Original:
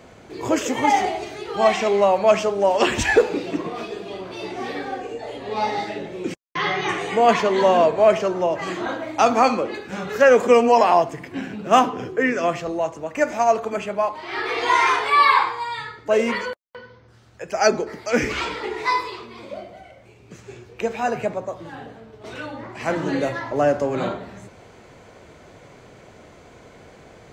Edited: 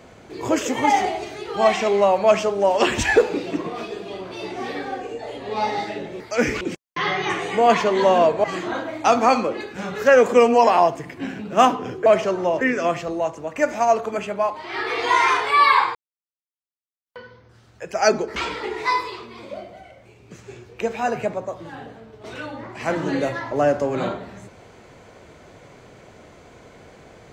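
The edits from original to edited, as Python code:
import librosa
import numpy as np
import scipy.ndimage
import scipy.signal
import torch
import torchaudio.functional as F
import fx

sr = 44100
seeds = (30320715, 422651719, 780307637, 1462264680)

y = fx.edit(x, sr, fx.move(start_s=8.03, length_s=0.55, to_s=12.2),
    fx.silence(start_s=15.54, length_s=1.11),
    fx.move(start_s=17.95, length_s=0.41, to_s=6.2), tone=tone)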